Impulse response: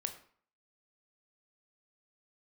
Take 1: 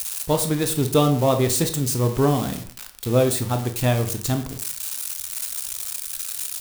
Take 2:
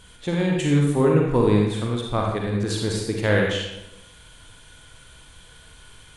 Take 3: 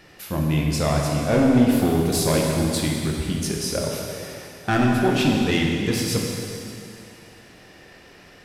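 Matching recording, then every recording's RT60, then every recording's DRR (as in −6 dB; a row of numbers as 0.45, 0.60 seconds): 1; 0.50, 0.95, 2.7 seconds; 6.5, −1.0, −1.5 decibels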